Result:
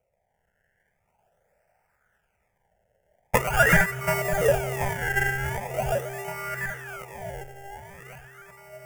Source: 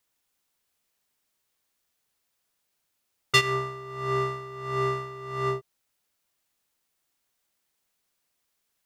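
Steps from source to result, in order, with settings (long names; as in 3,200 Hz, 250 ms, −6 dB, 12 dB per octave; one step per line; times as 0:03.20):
0:03.49–0:04.01: running median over 41 samples
parametric band 3,000 Hz +6.5 dB 0.82 octaves
delay that swaps between a low-pass and a high-pass 367 ms, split 830 Hz, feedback 76%, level −4.5 dB
reverb whose tail is shaped and stops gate 460 ms rising, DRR −4.5 dB
sample-and-hold swept by an LFO 25×, swing 100% 0.43 Hz
parametric band 480 Hz −4.5 dB 2 octaves
phaser with its sweep stopped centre 1,100 Hz, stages 6
auto-filter bell 0.67 Hz 550–1,700 Hz +13 dB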